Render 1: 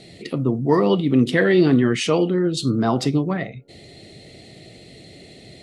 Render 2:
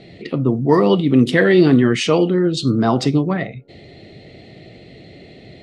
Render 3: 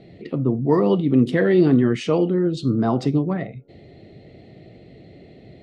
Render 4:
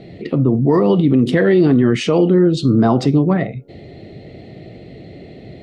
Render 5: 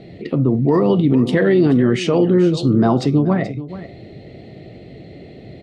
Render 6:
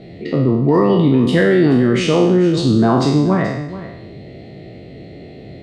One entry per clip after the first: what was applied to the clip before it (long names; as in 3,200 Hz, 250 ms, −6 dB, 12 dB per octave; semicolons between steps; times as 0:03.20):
low-pass that shuts in the quiet parts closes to 2,800 Hz, open at −12 dBFS; level +3.5 dB
tilt shelving filter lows +5 dB, about 1,400 Hz; level −8 dB
boost into a limiter +12.5 dB; level −4 dB
single-tap delay 430 ms −14.5 dB; level −1.5 dB
peak hold with a decay on every bin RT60 0.86 s